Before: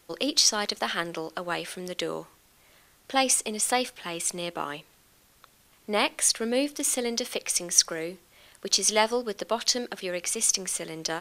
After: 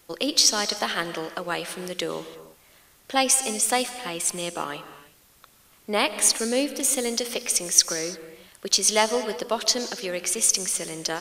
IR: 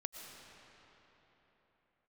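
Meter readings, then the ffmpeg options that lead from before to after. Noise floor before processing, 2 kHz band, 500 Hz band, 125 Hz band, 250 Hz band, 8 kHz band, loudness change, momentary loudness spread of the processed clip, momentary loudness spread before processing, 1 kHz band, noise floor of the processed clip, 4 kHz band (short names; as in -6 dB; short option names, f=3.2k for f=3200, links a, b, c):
-61 dBFS, +2.0 dB, +2.0 dB, +2.0 dB, +2.0 dB, +3.5 dB, +3.0 dB, 13 LU, 12 LU, +2.0 dB, -57 dBFS, +2.5 dB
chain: -filter_complex "[0:a]asplit=2[a][b];[1:a]atrim=start_sample=2205,afade=t=out:st=0.4:d=0.01,atrim=end_sample=18081,highshelf=f=7.9k:g=8.5[c];[b][c]afir=irnorm=-1:irlink=0,volume=1dB[d];[a][d]amix=inputs=2:normalize=0,volume=-3dB"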